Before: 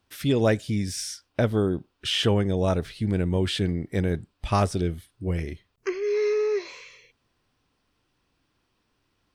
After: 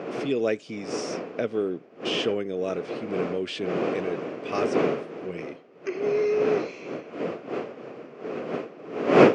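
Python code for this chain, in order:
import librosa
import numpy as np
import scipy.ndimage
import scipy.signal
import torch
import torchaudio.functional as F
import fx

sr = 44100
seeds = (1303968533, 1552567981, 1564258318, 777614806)

y = fx.dmg_wind(x, sr, seeds[0], corner_hz=580.0, level_db=-23.0)
y = fx.cabinet(y, sr, low_hz=180.0, low_slope=24, high_hz=6700.0, hz=(200.0, 440.0, 890.0, 1700.0, 2500.0, 3800.0), db=(-6, 5, -10, -3, 6, -6))
y = F.gain(torch.from_numpy(y), -4.0).numpy()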